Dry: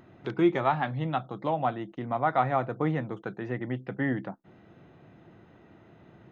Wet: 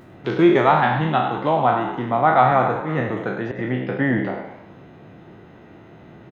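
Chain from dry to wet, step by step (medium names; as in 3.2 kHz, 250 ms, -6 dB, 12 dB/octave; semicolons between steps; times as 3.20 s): spectral sustain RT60 0.68 s; 2.68–3.59 s: slow attack 194 ms; frequency-shifting echo 101 ms, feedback 47%, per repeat +71 Hz, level -10.5 dB; trim +7.5 dB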